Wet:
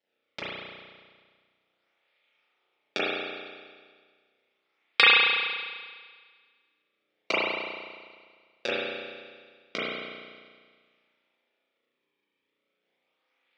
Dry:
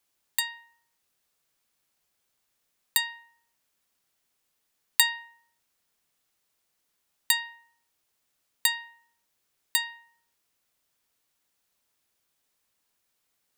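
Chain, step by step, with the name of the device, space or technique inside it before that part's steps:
reverb reduction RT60 1.4 s
parametric band 710 Hz −9 dB 2.5 octaves
circuit-bent sampling toy (sample-and-hold swept by an LFO 36×, swing 160% 0.35 Hz; loudspeaker in its box 580–5,200 Hz, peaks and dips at 700 Hz −6 dB, 1,000 Hz −9 dB, 1,600 Hz −5 dB, 2,300 Hz +8 dB, 3,500 Hz +8 dB, 5,200 Hz +5 dB)
spring reverb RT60 1.7 s, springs 33 ms, chirp 70 ms, DRR −9.5 dB
level −1.5 dB

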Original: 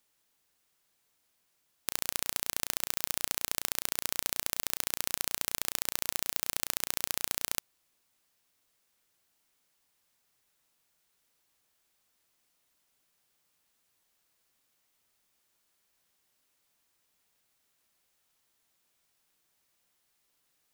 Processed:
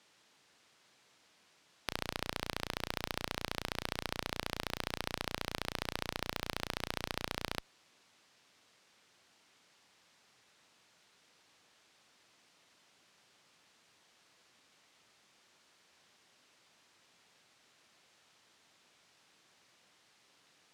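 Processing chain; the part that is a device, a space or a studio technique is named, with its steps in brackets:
valve radio (band-pass filter 110–5,300 Hz; tube saturation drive 24 dB, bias 0.8; saturating transformer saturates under 1,400 Hz)
level +17.5 dB

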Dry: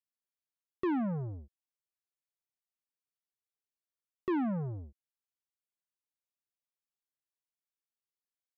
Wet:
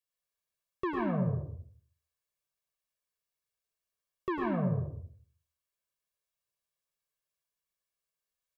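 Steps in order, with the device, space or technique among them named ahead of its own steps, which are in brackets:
microphone above a desk (comb filter 1.8 ms, depth 69%; convolution reverb RT60 0.45 s, pre-delay 98 ms, DRR −0.5 dB)

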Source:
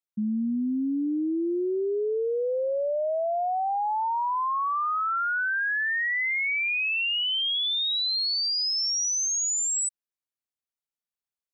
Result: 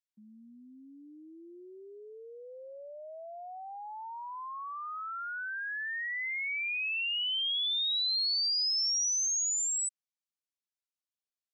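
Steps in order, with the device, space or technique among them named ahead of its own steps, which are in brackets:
piezo pickup straight into a mixer (low-pass filter 5,400 Hz; first difference)
level +2.5 dB

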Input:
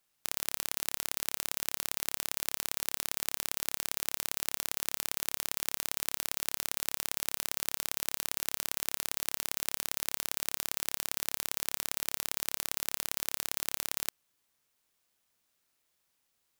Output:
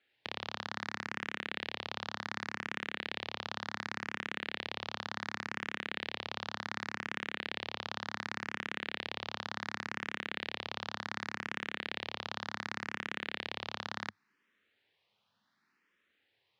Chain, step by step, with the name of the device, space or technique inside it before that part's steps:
low-shelf EQ 67 Hz −12 dB
barber-pole phaser into a guitar amplifier (frequency shifter mixed with the dry sound +0.68 Hz; soft clipping −20.5 dBFS, distortion −6 dB; loudspeaker in its box 98–3,800 Hz, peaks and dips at 100 Hz +6 dB, 210 Hz +6 dB, 660 Hz −5 dB, 1,800 Hz +5 dB)
level +8.5 dB

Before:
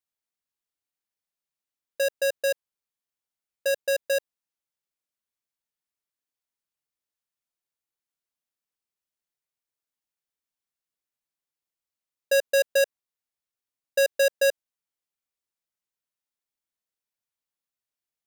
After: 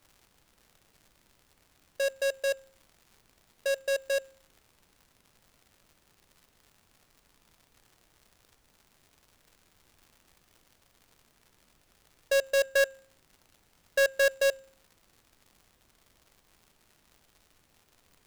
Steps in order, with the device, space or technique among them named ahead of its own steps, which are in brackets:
hum removal 268.5 Hz, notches 32
0:12.63–0:14.32: parametric band 1,500 Hz +9 dB 0.36 octaves
record under a worn stylus (stylus tracing distortion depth 0.02 ms; surface crackle 140 per second −43 dBFS; pink noise bed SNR 32 dB)
level −3.5 dB

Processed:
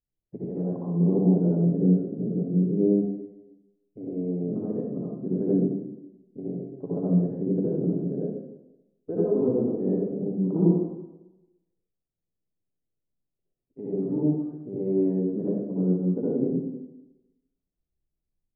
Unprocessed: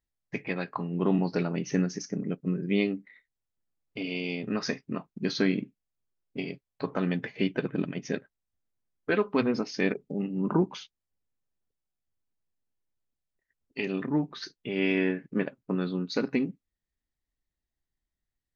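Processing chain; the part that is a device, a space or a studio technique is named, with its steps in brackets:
next room (low-pass filter 580 Hz 24 dB per octave; convolution reverb RT60 1.0 s, pre-delay 57 ms, DRR −7 dB)
level −4 dB

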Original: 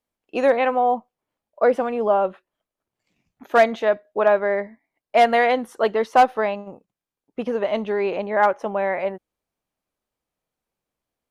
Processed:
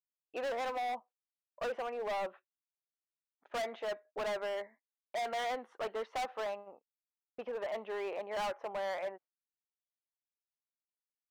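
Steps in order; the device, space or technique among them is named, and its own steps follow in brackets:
walkie-talkie (band-pass filter 550–2,400 Hz; hard clipping −24.5 dBFS, distortion −4 dB; noise gate −49 dBFS, range −32 dB)
level −9 dB

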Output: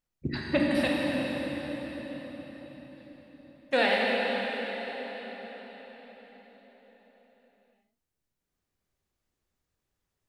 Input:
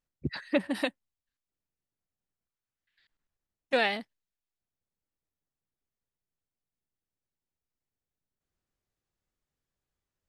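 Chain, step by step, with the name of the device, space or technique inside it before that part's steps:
cathedral (convolution reverb RT60 5.3 s, pre-delay 18 ms, DRR −3.5 dB)

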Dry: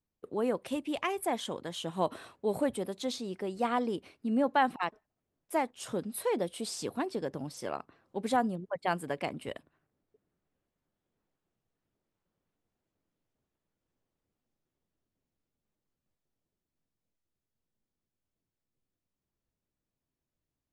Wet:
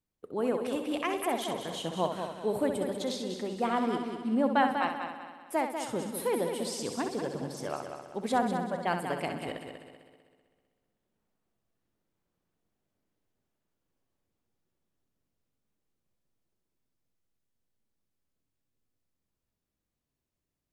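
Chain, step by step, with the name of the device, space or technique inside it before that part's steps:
multi-head tape echo (echo machine with several playback heads 64 ms, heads first and third, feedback 57%, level −8 dB; tape wow and flutter 16 cents)

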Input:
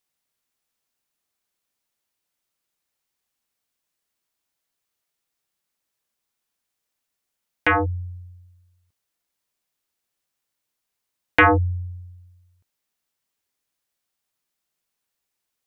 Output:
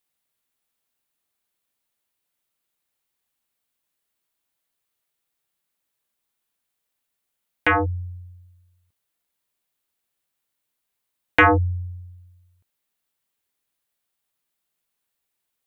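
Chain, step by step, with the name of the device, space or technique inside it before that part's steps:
exciter from parts (in parallel at −8 dB: high-pass filter 4,100 Hz 12 dB per octave + soft clipping −25 dBFS, distortion −13 dB + high-pass filter 3,800 Hz 24 dB per octave)

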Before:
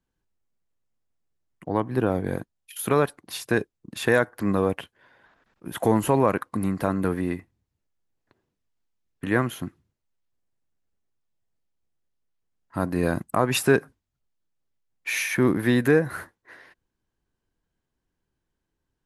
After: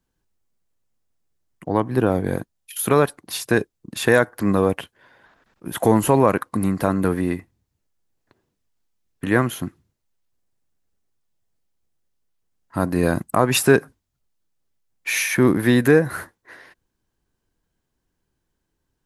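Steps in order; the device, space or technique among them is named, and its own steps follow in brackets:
exciter from parts (in parallel at −8 dB: high-pass filter 3,500 Hz 12 dB per octave + soft clipping −21.5 dBFS, distortion −19 dB)
on the sum: level +4.5 dB

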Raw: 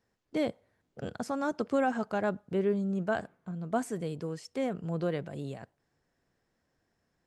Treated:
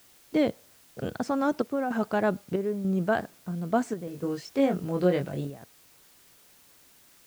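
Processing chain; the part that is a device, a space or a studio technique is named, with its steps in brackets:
worn cassette (low-pass filter 6,400 Hz; tape wow and flutter; tape dropouts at 0:01.62/0:02.56/0:03.94/0:05.45, 284 ms −7 dB; white noise bed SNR 27 dB)
parametric band 310 Hz +2.5 dB 0.77 octaves
0:04.05–0:05.50: double-tracking delay 22 ms −4 dB
level +4.5 dB

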